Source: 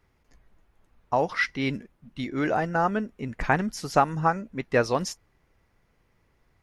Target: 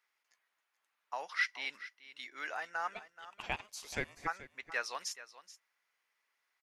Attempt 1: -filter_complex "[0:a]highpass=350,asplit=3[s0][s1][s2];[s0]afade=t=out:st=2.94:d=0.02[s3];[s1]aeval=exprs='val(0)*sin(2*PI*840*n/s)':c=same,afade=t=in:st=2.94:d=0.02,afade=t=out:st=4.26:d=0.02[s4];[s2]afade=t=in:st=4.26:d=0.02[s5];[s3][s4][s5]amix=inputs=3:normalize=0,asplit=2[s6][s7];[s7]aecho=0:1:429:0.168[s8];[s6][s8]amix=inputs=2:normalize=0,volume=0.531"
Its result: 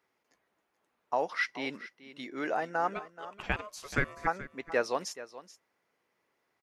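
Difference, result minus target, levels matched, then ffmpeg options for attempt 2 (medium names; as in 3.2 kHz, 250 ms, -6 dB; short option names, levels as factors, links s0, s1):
250 Hz band +8.5 dB
-filter_complex "[0:a]highpass=1400,asplit=3[s0][s1][s2];[s0]afade=t=out:st=2.94:d=0.02[s3];[s1]aeval=exprs='val(0)*sin(2*PI*840*n/s)':c=same,afade=t=in:st=2.94:d=0.02,afade=t=out:st=4.26:d=0.02[s4];[s2]afade=t=in:st=4.26:d=0.02[s5];[s3][s4][s5]amix=inputs=3:normalize=0,asplit=2[s6][s7];[s7]aecho=0:1:429:0.168[s8];[s6][s8]amix=inputs=2:normalize=0,volume=0.531"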